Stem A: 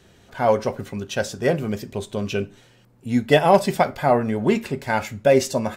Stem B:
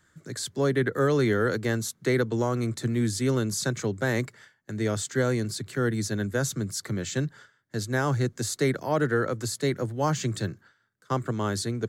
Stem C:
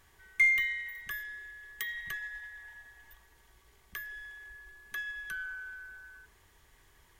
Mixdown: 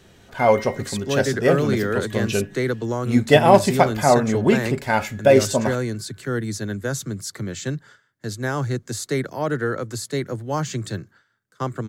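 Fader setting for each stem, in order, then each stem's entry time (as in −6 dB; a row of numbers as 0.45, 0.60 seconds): +2.0, +1.0, −8.0 decibels; 0.00, 0.50, 0.00 seconds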